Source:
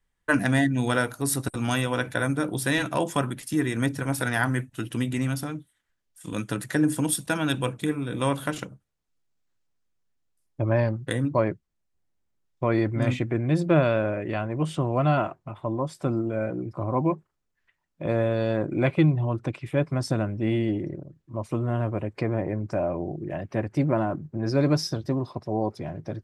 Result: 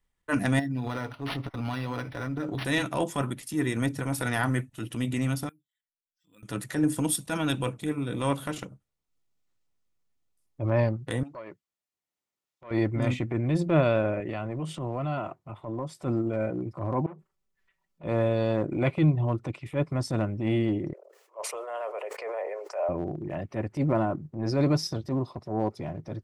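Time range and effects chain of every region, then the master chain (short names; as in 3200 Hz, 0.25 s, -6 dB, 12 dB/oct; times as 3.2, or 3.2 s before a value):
0.59–2.65 comb 7.1 ms, depth 43% + compressor 16:1, threshold -25 dBFS + decimation joined by straight lines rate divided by 6×
5.49–6.43 spectral contrast raised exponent 1.6 + pre-emphasis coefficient 0.97 + careless resampling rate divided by 4×, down filtered, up hold
11.23–12.71 HPF 800 Hz 6 dB/oct + compressor, threshold -34 dBFS + core saturation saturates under 720 Hz
14.2–16 HPF 79 Hz 24 dB/oct + compressor 3:1, threshold -28 dBFS
17.06–18.04 comb 5.2 ms, depth 68% + compressor 12:1, threshold -32 dBFS + core saturation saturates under 900 Hz
20.93–22.89 steep high-pass 430 Hz 72 dB/oct + bell 3700 Hz -5 dB 0.24 oct + sustainer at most 54 dB/s
whole clip: notch 1600 Hz, Q 9.5; transient shaper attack -8 dB, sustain -3 dB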